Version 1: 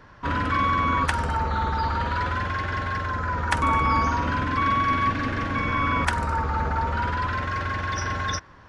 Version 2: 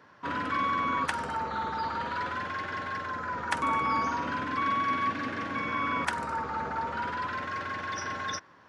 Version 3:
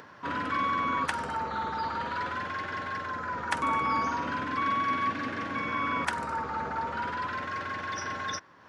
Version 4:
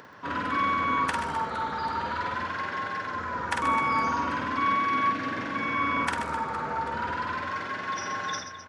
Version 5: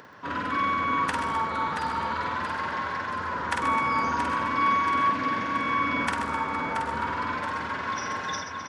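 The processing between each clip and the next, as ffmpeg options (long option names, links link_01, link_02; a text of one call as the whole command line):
ffmpeg -i in.wav -af "highpass=190,volume=-5.5dB" out.wav
ffmpeg -i in.wav -af "acompressor=mode=upward:threshold=-43dB:ratio=2.5" out.wav
ffmpeg -i in.wav -af "aecho=1:1:50|130|258|462.8|790.5:0.631|0.398|0.251|0.158|0.1" out.wav
ffmpeg -i in.wav -af "aecho=1:1:678|1356|2034|2712|3390|4068:0.447|0.228|0.116|0.0593|0.0302|0.0154" out.wav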